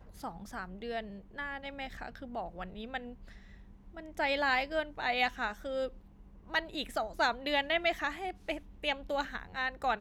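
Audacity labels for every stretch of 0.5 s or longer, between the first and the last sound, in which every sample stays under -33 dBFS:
2.970000	4.190000	silence
5.870000	6.540000	silence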